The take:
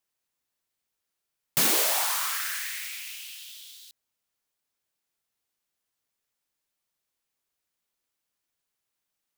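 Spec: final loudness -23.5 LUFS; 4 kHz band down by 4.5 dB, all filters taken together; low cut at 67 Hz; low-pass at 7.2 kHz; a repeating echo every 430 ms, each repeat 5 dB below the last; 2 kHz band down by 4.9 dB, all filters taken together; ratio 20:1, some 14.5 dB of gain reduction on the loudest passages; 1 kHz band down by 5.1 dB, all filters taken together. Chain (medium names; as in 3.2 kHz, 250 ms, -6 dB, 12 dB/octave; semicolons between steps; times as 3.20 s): high-pass 67 Hz; low-pass 7.2 kHz; peaking EQ 1 kHz -5.5 dB; peaking EQ 2 kHz -3.5 dB; peaking EQ 4 kHz -4 dB; compression 20:1, threshold -40 dBFS; feedback delay 430 ms, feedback 56%, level -5 dB; trim +19.5 dB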